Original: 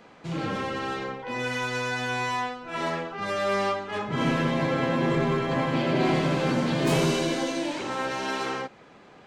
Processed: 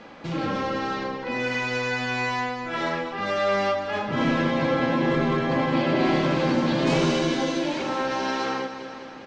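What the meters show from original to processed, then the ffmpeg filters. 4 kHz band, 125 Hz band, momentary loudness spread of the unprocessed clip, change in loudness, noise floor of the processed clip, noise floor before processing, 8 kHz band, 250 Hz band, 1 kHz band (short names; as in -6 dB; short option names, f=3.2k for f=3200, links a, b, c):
+2.0 dB, 0.0 dB, 8 LU, +2.5 dB, -39 dBFS, -52 dBFS, -2.0 dB, +3.0 dB, +2.0 dB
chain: -filter_complex "[0:a]aecho=1:1:3.6:0.31,aecho=1:1:201|402|603|804|1005|1206:0.251|0.141|0.0788|0.0441|0.0247|0.0138,asplit=2[a][b];[b]acompressor=threshold=-39dB:ratio=6,volume=1dB[c];[a][c]amix=inputs=2:normalize=0,lowpass=f=6.2k:w=0.5412,lowpass=f=6.2k:w=1.3066"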